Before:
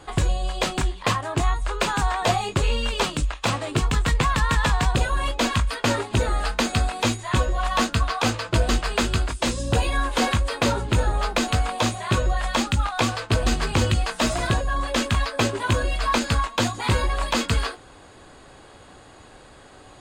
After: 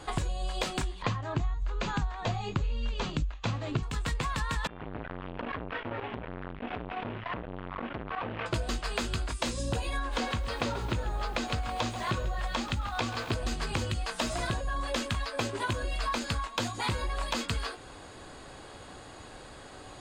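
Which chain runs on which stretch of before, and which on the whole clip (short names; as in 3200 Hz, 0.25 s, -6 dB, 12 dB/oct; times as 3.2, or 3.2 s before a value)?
1.02–3.83 steep low-pass 7300 Hz 48 dB/oct + tone controls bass +11 dB, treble -3 dB + notch 5200 Hz, Q 18
4.67–8.46 delta modulation 16 kbps, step -31 dBFS + compressor 12:1, threshold -26 dBFS + core saturation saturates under 1100 Hz
9.99–13.33 air absorption 53 m + lo-fi delay 0.134 s, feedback 55%, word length 7-bit, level -13.5 dB
whole clip: bell 4800 Hz +2 dB; de-hum 393.6 Hz, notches 9; compressor 10:1, threshold -28 dBFS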